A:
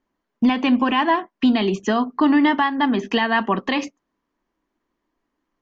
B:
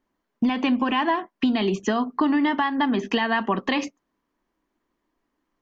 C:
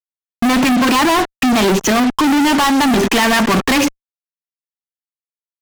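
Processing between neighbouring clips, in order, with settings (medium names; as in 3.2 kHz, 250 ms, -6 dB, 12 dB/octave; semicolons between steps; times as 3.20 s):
compression, threshold -18 dBFS, peak gain reduction 6 dB
fuzz box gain 43 dB, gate -41 dBFS; trim +1.5 dB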